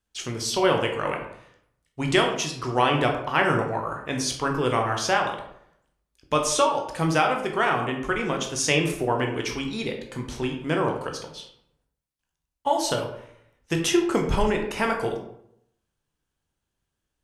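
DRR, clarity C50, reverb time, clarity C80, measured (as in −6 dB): 2.5 dB, 6.5 dB, 0.70 s, 9.5 dB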